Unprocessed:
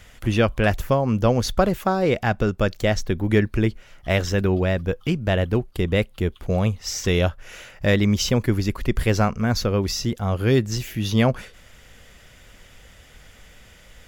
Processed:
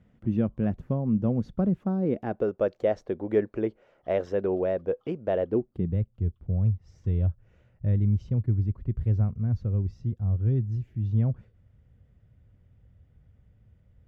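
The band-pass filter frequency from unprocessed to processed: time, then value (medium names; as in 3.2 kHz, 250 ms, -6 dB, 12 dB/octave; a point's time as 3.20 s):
band-pass filter, Q 1.8
1.98 s 190 Hz
2.47 s 510 Hz
5.42 s 510 Hz
6.01 s 100 Hz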